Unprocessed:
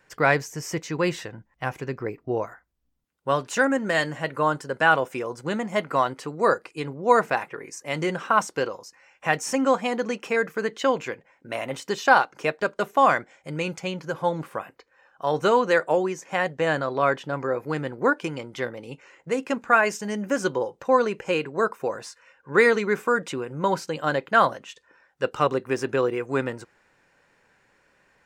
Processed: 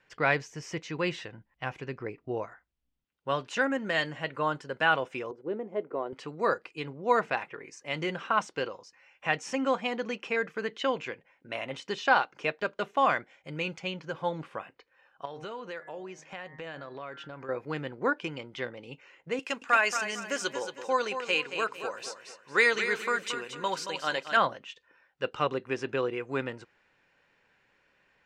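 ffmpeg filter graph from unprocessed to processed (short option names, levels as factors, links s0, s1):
-filter_complex "[0:a]asettb=1/sr,asplit=3[s0][s1][s2];[s0]atrim=end=5.314[s3];[s1]atrim=start=5.31:end=6.13,asetpts=PTS-STARTPTS,afade=t=in:d=0.004:c=qsin,afade=t=out:st=0.816:d=0.004:c=qsin,bandpass=f=400:t=q:w=3.3,acontrast=82[s4];[s2]atrim=start=6.126[s5];[s3][s4]acrossfade=d=0.004:c1=hsin:c2=qsin[s6];[s6][s5]acrossfade=d=0.004:c1=qsin:c2=hsin,asettb=1/sr,asplit=3[s7][s8][s9];[s7]atrim=end=15.254[s10];[s8]atrim=start=15.25:end=17.49,asetpts=PTS-STARTPTS,afade=t=in:d=0.004:c=qsin,afade=t=out:st=2.236:d=0.004:c=qsin,bandreject=f=154.4:t=h:w=4,bandreject=f=308.8:t=h:w=4,bandreject=f=463.2:t=h:w=4,bandreject=f=617.6:t=h:w=4,bandreject=f=772:t=h:w=4,bandreject=f=926.4:t=h:w=4,bandreject=f=1080.8:t=h:w=4,bandreject=f=1235.2:t=h:w=4,bandreject=f=1389.6:t=h:w=4,bandreject=f=1544:t=h:w=4,bandreject=f=1698.4:t=h:w=4,bandreject=f=1852.8:t=h:w=4,bandreject=f=2007.2:t=h:w=4,bandreject=f=2161.6:t=h:w=4,acompressor=threshold=0.02:ratio=3:attack=3.2:release=140:knee=1:detection=peak[s11];[s9]atrim=start=17.486[s12];[s10][s11]acrossfade=d=0.004:c1=hsin:c2=qsin[s13];[s13][s12]acrossfade=d=0.004:c1=qsin:c2=hsin,asettb=1/sr,asplit=3[s14][s15][s16];[s14]atrim=end=19.394[s17];[s15]atrim=start=19.39:end=24.37,asetpts=PTS-STARTPTS,afade=t=in:d=0.004:c=qsin,afade=t=out:st=4.976:d=0.004:c=qsin,aemphasis=mode=production:type=riaa,aecho=1:1:226|452|678|904:0.355|0.124|0.0435|0.0152,atrim=end_sample=219618[s18];[s16]atrim=start=24.366[s19];[s17][s18]acrossfade=d=0.004:c1=hsin:c2=qsin[s20];[s20][s19]acrossfade=d=0.004:c1=qsin:c2=hsin,lowpass=5600,equalizer=f=2900:t=o:w=1:g=6.5,volume=0.447"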